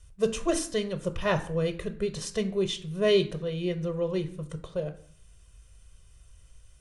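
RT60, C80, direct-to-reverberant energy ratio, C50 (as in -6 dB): 0.50 s, 18.0 dB, 8.0 dB, 14.0 dB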